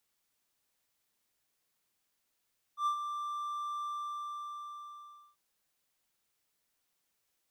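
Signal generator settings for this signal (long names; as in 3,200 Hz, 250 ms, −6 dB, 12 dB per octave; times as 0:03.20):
note with an ADSR envelope triangle 1,180 Hz, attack 93 ms, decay 93 ms, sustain −8.5 dB, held 1.07 s, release 1,520 ms −24.5 dBFS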